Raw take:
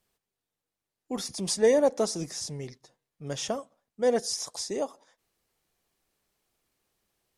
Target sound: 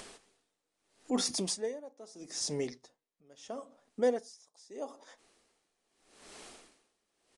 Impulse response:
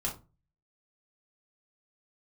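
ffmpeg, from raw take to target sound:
-filter_complex "[0:a]lowshelf=f=190:t=q:w=1.5:g=-9,acompressor=mode=upward:threshold=-33dB:ratio=2.5,asplit=2[a][b];[1:a]atrim=start_sample=2205[c];[b][c]afir=irnorm=-1:irlink=0,volume=-17dB[d];[a][d]amix=inputs=2:normalize=0,aresample=22050,aresample=44100,aeval=exprs='val(0)*pow(10,-31*(0.5-0.5*cos(2*PI*0.78*n/s))/20)':c=same,volume=3dB"

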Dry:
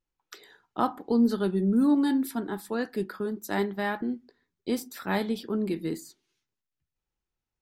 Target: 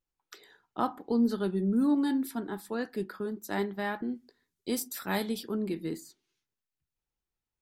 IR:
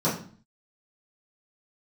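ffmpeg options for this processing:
-filter_complex "[0:a]asettb=1/sr,asplit=3[a][b][c];[a]atrim=end=4.154[d];[b]atrim=start=4.15:end=5.55,asetpts=PTS-STARTPTS,afade=t=in:d=0.004:c=qsin,afade=t=out:st=1.396:d=0.004:c=qsin,equalizer=f=11k:w=0.4:g=11[e];[c]atrim=start=5.546[f];[d][e]acrossfade=d=0.004:c1=hsin:c2=qsin[g];[g][f]acrossfade=d=0.004:c1=qsin:c2=hsin,volume=-3.5dB"

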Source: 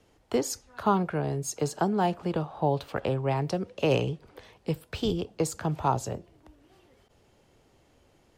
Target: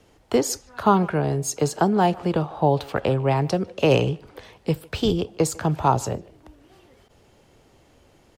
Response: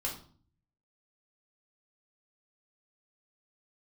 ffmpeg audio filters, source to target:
-filter_complex "[0:a]asplit=2[a][b];[b]adelay=150,highpass=300,lowpass=3.4k,asoftclip=type=hard:threshold=-18.5dB,volume=-22dB[c];[a][c]amix=inputs=2:normalize=0,volume=6.5dB"

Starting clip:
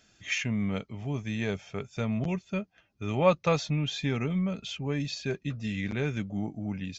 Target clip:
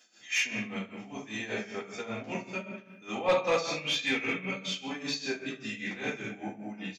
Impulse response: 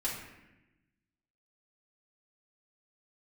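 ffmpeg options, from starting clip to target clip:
-filter_complex "[0:a]highpass=170,bass=f=250:g=-14,treble=f=4k:g=4,aecho=1:1:15|71:0.422|0.355,asettb=1/sr,asplit=3[a][b][c];[a]atrim=end=0.734[d];[b]atrim=start=0.73:end=1.2,asetpts=PTS-STARTPTS,afade=t=in:d=0.004:c=qsin,afade=t=out:st=0.466:d=0.004:c=qsin,acompressor=threshold=-37dB:ratio=6[e];[c]atrim=start=1.196[f];[d][e]acrossfade=d=0.004:c1=hsin:c2=qsin[g];[g][f]acrossfade=d=0.004:c1=qsin:c2=hsin,asettb=1/sr,asplit=3[h][i][j];[h]atrim=end=3.764[k];[i]atrim=start=3.76:end=4.56,asetpts=PTS-STARTPTS,afade=t=in:d=0.004:c=qsin,afade=t=out:st=0.796:d=0.004:c=qsin,equalizer=f=2.4k:w=1.6:g=8.5[l];[j]atrim=start=4.556[m];[k][l]acrossfade=d=0.004:c1=hsin:c2=qsin[n];[n][m]acrossfade=d=0.004:c1=qsin:c2=hsin[o];[1:a]atrim=start_sample=2205[p];[o][p]afir=irnorm=-1:irlink=0,tremolo=f=5.1:d=0.76,asoftclip=type=tanh:threshold=-18.5dB"

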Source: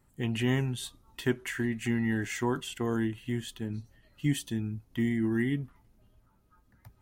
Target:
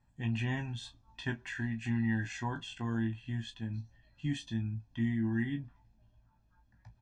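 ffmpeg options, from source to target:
-af "lowpass=f=6.3k:w=0.5412,lowpass=f=6.3k:w=1.3066,aecho=1:1:1.2:0.69,aecho=1:1:18|35:0.473|0.211,volume=-7.5dB"

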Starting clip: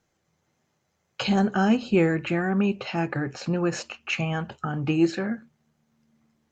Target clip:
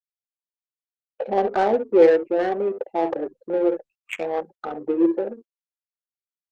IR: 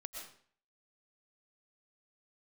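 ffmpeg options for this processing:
-af "aecho=1:1:54|66:0.158|0.316,afftfilt=real='re*gte(hypot(re,im),0.0562)':imag='im*gte(hypot(re,im),0.0562)':win_size=1024:overlap=0.75,afwtdn=0.0316,highpass=f=380:w=0.5412,highpass=f=380:w=1.3066,equalizer=f=500:t=q:w=4:g=7,equalizer=f=1.4k:t=q:w=4:g=-10,equalizer=f=2.9k:t=q:w=4:g=-9,lowpass=f=3.8k:w=0.5412,lowpass=f=3.8k:w=1.3066,adynamicsmooth=sensitivity=3:basefreq=760,volume=7dB" -ar 48000 -c:a libopus -b:a 48k

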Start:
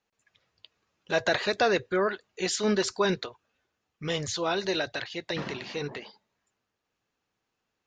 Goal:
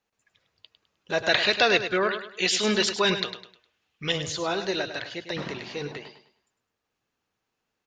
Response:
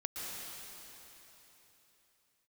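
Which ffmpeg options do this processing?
-filter_complex "[0:a]asettb=1/sr,asplit=3[a][b][c];[a]atrim=end=1.294[d];[b]atrim=start=1.29:end=4.12,asetpts=PTS-STARTPTS,afade=t=in:d=0.004:c=qsin,afade=t=out:st=2.826:d=0.004:c=qsin,equalizer=f=3k:w=0.95:g=11.5[e];[c]atrim=start=4.116[f];[d][e]acrossfade=d=0.004:c1=hsin:c2=qsin[g];[g][f]acrossfade=d=0.004:c1=qsin:c2=hsin,aecho=1:1:103|206|309|412:0.316|0.104|0.0344|0.0114"

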